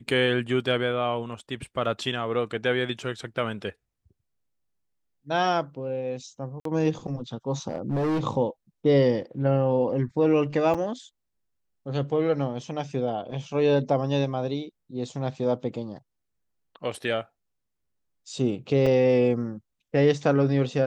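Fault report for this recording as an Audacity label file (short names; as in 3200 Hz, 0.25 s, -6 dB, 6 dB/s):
6.600000	6.650000	gap 53 ms
7.690000	8.210000	clipped -22.5 dBFS
10.740000	10.750000	gap 6.1 ms
18.860000	18.860000	gap 4.4 ms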